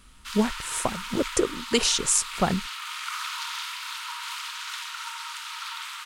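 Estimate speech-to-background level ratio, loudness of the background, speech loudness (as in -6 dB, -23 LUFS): 8.0 dB, -33.5 LUFS, -25.5 LUFS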